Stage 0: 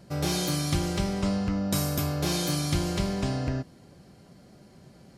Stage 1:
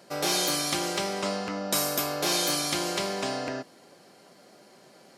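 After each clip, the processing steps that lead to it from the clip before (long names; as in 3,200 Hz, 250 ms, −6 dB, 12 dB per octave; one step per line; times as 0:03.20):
high-pass filter 430 Hz 12 dB per octave
level +5 dB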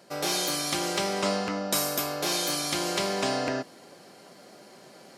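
speech leveller 0.5 s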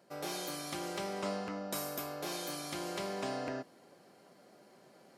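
parametric band 5,400 Hz −6 dB 2.5 octaves
level −9 dB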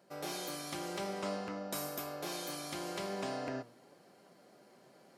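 flanger 0.95 Hz, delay 4.8 ms, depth 3.8 ms, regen +89%
level +3.5 dB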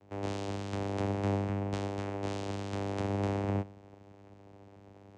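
channel vocoder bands 4, saw 99.5 Hz
level +7.5 dB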